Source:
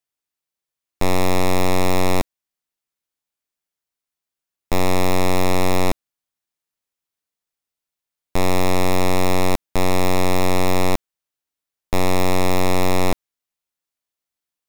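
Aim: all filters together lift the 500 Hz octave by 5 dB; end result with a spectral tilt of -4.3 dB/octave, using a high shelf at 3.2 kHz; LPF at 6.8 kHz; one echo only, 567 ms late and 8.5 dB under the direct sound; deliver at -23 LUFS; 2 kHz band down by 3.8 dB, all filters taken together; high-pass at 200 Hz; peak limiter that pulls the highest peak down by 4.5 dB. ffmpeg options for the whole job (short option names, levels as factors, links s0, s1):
-af "highpass=200,lowpass=6800,equalizer=f=500:t=o:g=6.5,equalizer=f=2000:t=o:g=-6.5,highshelf=f=3200:g=5,alimiter=limit=0.266:level=0:latency=1,aecho=1:1:567:0.376,volume=1.26"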